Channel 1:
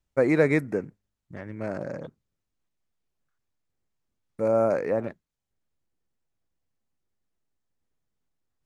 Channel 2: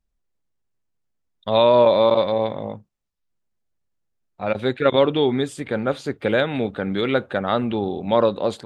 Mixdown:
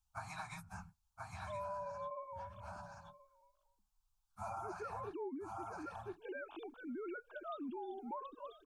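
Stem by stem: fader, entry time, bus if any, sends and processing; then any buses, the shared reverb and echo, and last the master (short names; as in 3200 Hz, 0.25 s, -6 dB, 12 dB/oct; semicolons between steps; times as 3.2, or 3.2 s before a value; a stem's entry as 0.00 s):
+1.5 dB, 0.00 s, no send, echo send -5.5 dB, phase scrambler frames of 50 ms; elliptic band-stop 160–780 Hz, stop band 40 dB; compressor 4:1, threshold -33 dBFS, peak gain reduction 9 dB
-10.5 dB, 0.00 s, no send, echo send -23.5 dB, sine-wave speech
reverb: off
echo: echo 1.027 s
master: bell 430 Hz -5.5 dB 0.65 oct; fixed phaser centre 530 Hz, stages 6; compressor 6:1, threshold -41 dBFS, peak gain reduction 11 dB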